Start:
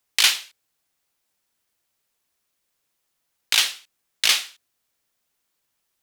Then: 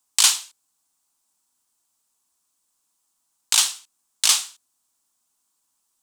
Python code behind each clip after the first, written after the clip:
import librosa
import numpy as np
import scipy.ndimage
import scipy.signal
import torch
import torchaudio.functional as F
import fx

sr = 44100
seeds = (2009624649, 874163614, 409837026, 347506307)

y = fx.graphic_eq(x, sr, hz=(125, 250, 500, 1000, 2000, 8000), db=(-7, 6, -7, 9, -8, 12))
y = y * librosa.db_to_amplitude(-2.5)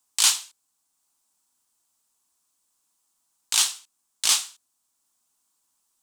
y = fx.transient(x, sr, attack_db=-7, sustain_db=-2)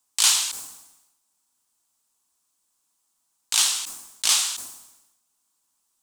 y = fx.sustainer(x, sr, db_per_s=62.0)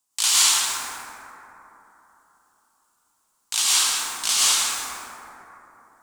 y = fx.rev_plate(x, sr, seeds[0], rt60_s=3.6, hf_ratio=0.3, predelay_ms=90, drr_db=-9.5)
y = y * librosa.db_to_amplitude(-3.5)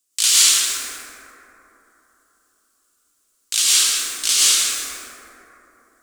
y = fx.fixed_phaser(x, sr, hz=370.0, stages=4)
y = y * librosa.db_to_amplitude(4.5)